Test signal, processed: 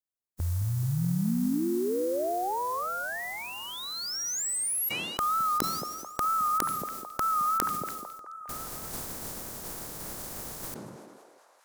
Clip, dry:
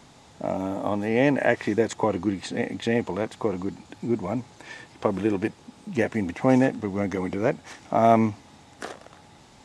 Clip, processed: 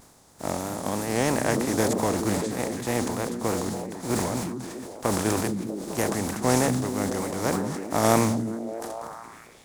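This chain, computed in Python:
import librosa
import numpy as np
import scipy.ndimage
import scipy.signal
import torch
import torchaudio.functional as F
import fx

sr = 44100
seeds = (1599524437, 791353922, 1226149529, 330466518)

y = fx.spec_flatten(x, sr, power=0.43)
y = fx.peak_eq(y, sr, hz=2800.0, db=-12.5, octaves=1.6)
y = fx.vibrato(y, sr, rate_hz=3.2, depth_cents=68.0)
y = fx.echo_stepped(y, sr, ms=214, hz=170.0, octaves=0.7, feedback_pct=70, wet_db=-4.0)
y = fx.sustainer(y, sr, db_per_s=31.0)
y = y * 10.0 ** (-1.5 / 20.0)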